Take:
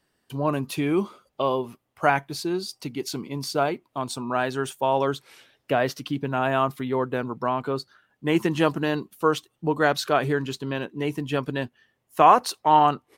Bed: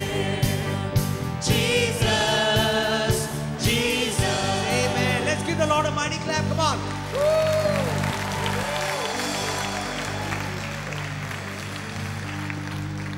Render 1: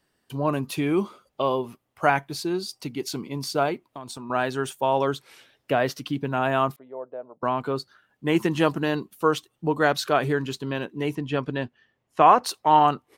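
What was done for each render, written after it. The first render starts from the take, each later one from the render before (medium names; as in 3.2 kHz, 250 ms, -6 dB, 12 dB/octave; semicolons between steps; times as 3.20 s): 3.89–4.30 s: compression, threshold -33 dBFS; 6.76–7.43 s: band-pass filter 610 Hz, Q 5.9; 11.15–12.44 s: distance through air 90 m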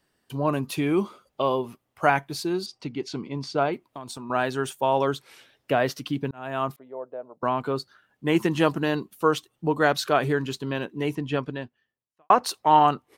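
2.66–3.73 s: distance through air 120 m; 6.31–6.82 s: fade in; 11.34–12.30 s: fade out quadratic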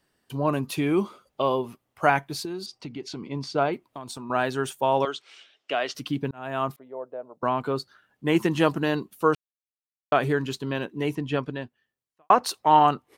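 2.45–3.22 s: compression 3:1, threshold -32 dBFS; 5.05–5.95 s: cabinet simulation 490–7400 Hz, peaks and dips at 520 Hz -6 dB, 920 Hz -7 dB, 1.7 kHz -4 dB, 3 kHz +6 dB; 9.35–10.12 s: mute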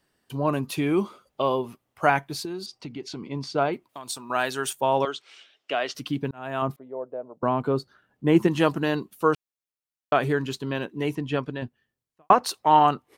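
3.89–4.73 s: tilt EQ +2.5 dB/octave; 6.62–8.48 s: tilt shelf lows +5 dB, about 870 Hz; 11.62–12.33 s: bass shelf 320 Hz +10 dB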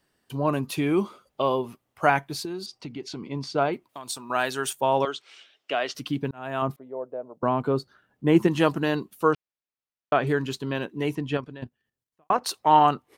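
9.33–10.27 s: distance through air 130 m; 11.37–12.46 s: level held to a coarse grid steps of 10 dB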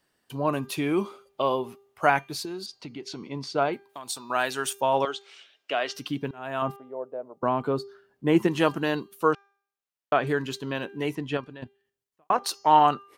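bass shelf 250 Hz -5.5 dB; de-hum 398.4 Hz, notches 17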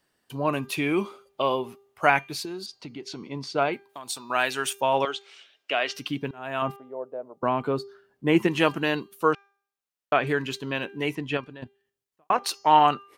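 dynamic bell 2.4 kHz, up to +7 dB, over -46 dBFS, Q 1.8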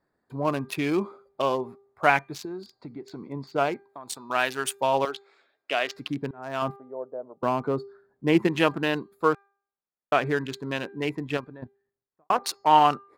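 local Wiener filter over 15 samples; treble shelf 9.9 kHz +6 dB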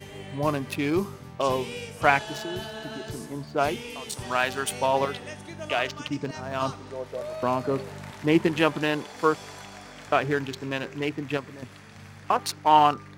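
add bed -15.5 dB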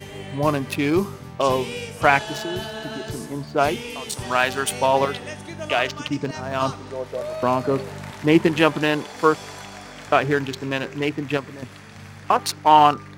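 trim +5 dB; peak limiter -1 dBFS, peak gain reduction 2.5 dB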